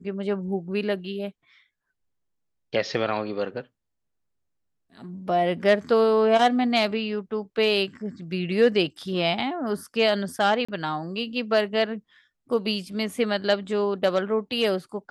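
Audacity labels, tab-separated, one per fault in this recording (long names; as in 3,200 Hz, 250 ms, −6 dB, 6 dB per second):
10.650000	10.690000	drop-out 35 ms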